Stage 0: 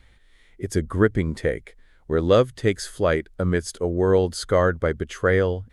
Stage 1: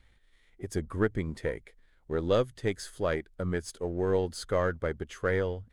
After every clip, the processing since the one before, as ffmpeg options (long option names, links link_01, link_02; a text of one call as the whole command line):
ffmpeg -i in.wav -af "aeval=exprs='if(lt(val(0),0),0.708*val(0),val(0))':channel_layout=same,volume=-7.5dB" out.wav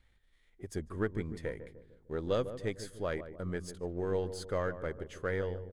ffmpeg -i in.wav -filter_complex "[0:a]asplit=2[link_01][link_02];[link_02]adelay=150,lowpass=frequency=810:poles=1,volume=-10dB,asplit=2[link_03][link_04];[link_04]adelay=150,lowpass=frequency=810:poles=1,volume=0.53,asplit=2[link_05][link_06];[link_06]adelay=150,lowpass=frequency=810:poles=1,volume=0.53,asplit=2[link_07][link_08];[link_08]adelay=150,lowpass=frequency=810:poles=1,volume=0.53,asplit=2[link_09][link_10];[link_10]adelay=150,lowpass=frequency=810:poles=1,volume=0.53,asplit=2[link_11][link_12];[link_12]adelay=150,lowpass=frequency=810:poles=1,volume=0.53[link_13];[link_01][link_03][link_05][link_07][link_09][link_11][link_13]amix=inputs=7:normalize=0,volume=-6dB" out.wav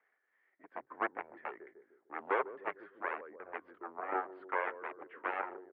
ffmpeg -i in.wav -af "aeval=exprs='0.126*(cos(1*acos(clip(val(0)/0.126,-1,1)))-cos(1*PI/2))+0.0355*(cos(7*acos(clip(val(0)/0.126,-1,1)))-cos(7*PI/2))':channel_layout=same,aphaser=in_gain=1:out_gain=1:delay=4.8:decay=0.24:speed=0.9:type=triangular,highpass=frequency=540:width_type=q:width=0.5412,highpass=frequency=540:width_type=q:width=1.307,lowpass=frequency=2200:width_type=q:width=0.5176,lowpass=frequency=2200:width_type=q:width=0.7071,lowpass=frequency=2200:width_type=q:width=1.932,afreqshift=-95,volume=2dB" out.wav